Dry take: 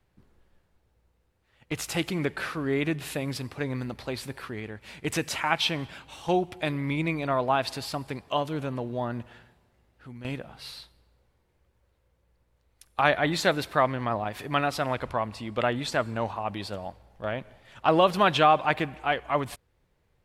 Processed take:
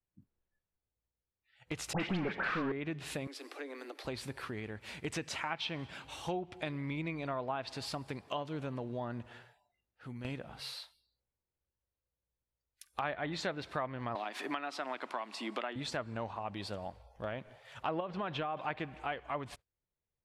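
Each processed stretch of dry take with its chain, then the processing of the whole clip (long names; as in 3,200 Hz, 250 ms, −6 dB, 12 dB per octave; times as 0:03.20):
0:01.93–0:02.72: parametric band 190 Hz +11.5 dB 0.53 octaves + mid-hump overdrive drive 27 dB, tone 3,600 Hz, clips at −11 dBFS + all-pass dispersion highs, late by 76 ms, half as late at 1,700 Hz
0:03.27–0:04.05: Butterworth high-pass 280 Hz 96 dB per octave + downward compressor 2 to 1, threshold −43 dBFS + notch filter 950 Hz, Q 8.5
0:14.15–0:15.76: high-pass filter 270 Hz 24 dB per octave + parametric band 490 Hz −8.5 dB 0.47 octaves + multiband upward and downward compressor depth 100%
0:18.00–0:18.57: low-pass filter 2,200 Hz 6 dB per octave + downward compressor, threshold −21 dBFS
whole clip: noise reduction from a noise print of the clip's start 23 dB; treble cut that deepens with the level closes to 3,000 Hz, closed at −19.5 dBFS; downward compressor 2.5 to 1, threshold −38 dBFS; level −1 dB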